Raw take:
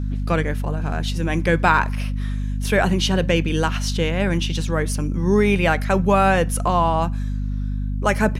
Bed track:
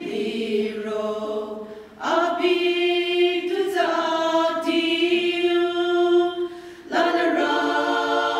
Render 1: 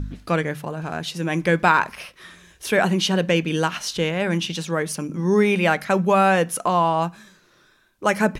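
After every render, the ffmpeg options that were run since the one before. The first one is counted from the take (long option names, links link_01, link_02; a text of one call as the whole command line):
ffmpeg -i in.wav -af "bandreject=frequency=50:width_type=h:width=4,bandreject=frequency=100:width_type=h:width=4,bandreject=frequency=150:width_type=h:width=4,bandreject=frequency=200:width_type=h:width=4,bandreject=frequency=250:width_type=h:width=4" out.wav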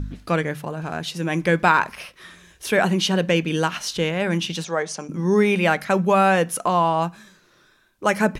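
ffmpeg -i in.wav -filter_complex "[0:a]asettb=1/sr,asplit=3[link_01][link_02][link_03];[link_01]atrim=end=4.644[link_04];[link_02]atrim=start=4.64:end=5.09,asetpts=PTS-STARTPTS,afade=type=in:duration=0.004:curve=qsin,afade=type=out:start_time=0.446:duration=0.004:curve=qsin,highpass=250,equalizer=frequency=290:width_type=q:width=4:gain=-8,equalizer=frequency=740:width_type=q:width=4:gain=8,equalizer=frequency=2700:width_type=q:width=4:gain=-5,equalizer=frequency=6200:width_type=q:width=4:gain=4,lowpass=frequency=7700:width=0.5412,lowpass=frequency=7700:width=1.3066[link_05];[link_03]atrim=start=5.086[link_06];[link_04][link_05]acrossfade=duration=0.004:curve1=hsin:curve2=qsin[link_07];[link_07][link_06]acrossfade=duration=0.004:curve1=qsin:curve2=hsin" out.wav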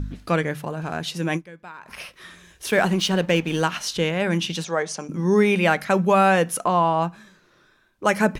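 ffmpeg -i in.wav -filter_complex "[0:a]asettb=1/sr,asplit=3[link_01][link_02][link_03];[link_01]atrim=end=2.704[link_04];[link_02]atrim=start=2.7:end=3.62,asetpts=PTS-STARTPTS,afade=type=in:duration=0.004:curve=qsin,afade=type=out:start_time=0.916:duration=0.004:curve=qsin,aeval=exprs='sgn(val(0))*max(abs(val(0))-0.0126,0)':channel_layout=same[link_05];[link_03]atrim=start=3.616[link_06];[link_04][link_05]acrossfade=duration=0.004:curve1=hsin:curve2=qsin[link_07];[link_07][link_06]acrossfade=duration=0.004:curve1=qsin:curve2=hsin,asettb=1/sr,asplit=3[link_08][link_09][link_10];[link_08]atrim=end=6.644[link_11];[link_09]atrim=start=6.64:end=8.05,asetpts=PTS-STARTPTS,afade=type=in:duration=0.004:curve=qsin,afade=type=out:start_time=1.406:duration=0.004:curve=qsin,highshelf=frequency=4100:gain=-7.5[link_12];[link_10]atrim=start=8.046[link_13];[link_11][link_12]acrossfade=duration=0.004:curve1=hsin:curve2=qsin[link_14];[link_14][link_13]acrossfade=duration=0.004:curve1=qsin:curve2=hsin,asplit=3[link_15][link_16][link_17];[link_15]atrim=end=1.62,asetpts=PTS-STARTPTS,afade=type=out:start_time=1.36:duration=0.26:curve=exp:silence=0.0630957[link_18];[link_16]atrim=start=1.62:end=1.65,asetpts=PTS-STARTPTS,volume=-24dB[link_19];[link_17]atrim=start=1.65,asetpts=PTS-STARTPTS,afade=type=in:duration=0.26:curve=exp:silence=0.0630957[link_20];[link_18][link_19][link_20]concat=n=3:v=0:a=1" out.wav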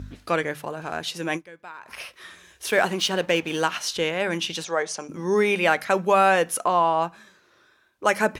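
ffmpeg -i in.wav -af "highpass=77,equalizer=frequency=170:width=1.2:gain=-10.5" out.wav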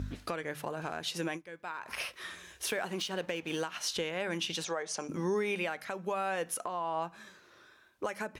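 ffmpeg -i in.wav -af "acompressor=threshold=-29dB:ratio=6,alimiter=limit=-23dB:level=0:latency=1:release=343" out.wav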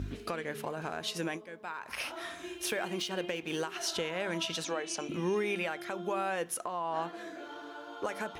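ffmpeg -i in.wav -i bed.wav -filter_complex "[1:a]volume=-24dB[link_01];[0:a][link_01]amix=inputs=2:normalize=0" out.wav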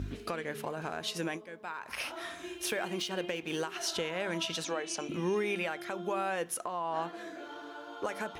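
ffmpeg -i in.wav -af anull out.wav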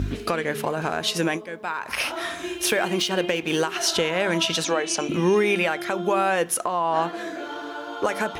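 ffmpeg -i in.wav -af "volume=11.5dB" out.wav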